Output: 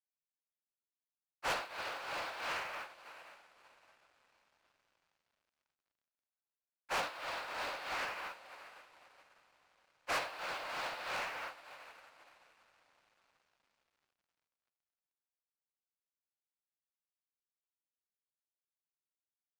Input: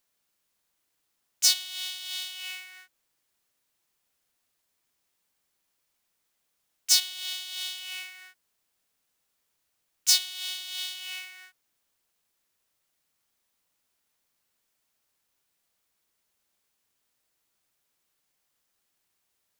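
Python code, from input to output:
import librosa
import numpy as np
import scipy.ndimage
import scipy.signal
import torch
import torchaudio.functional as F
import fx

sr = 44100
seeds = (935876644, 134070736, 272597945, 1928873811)

p1 = scipy.signal.sosfilt(scipy.signal.butter(4, 1400.0, 'lowpass', fs=sr, output='sos'), x)
p2 = fx.rev_gated(p1, sr, seeds[0], gate_ms=100, shape='rising', drr_db=11.5)
p3 = fx.noise_vocoder(p2, sr, seeds[1], bands=8)
p4 = p3 + fx.echo_diffused(p3, sr, ms=621, feedback_pct=66, wet_db=-10.0, dry=0)
p5 = fx.leveller(p4, sr, passes=5)
p6 = fx.upward_expand(p5, sr, threshold_db=-51.0, expansion=2.5)
y = p6 * 10.0 ** (3.5 / 20.0)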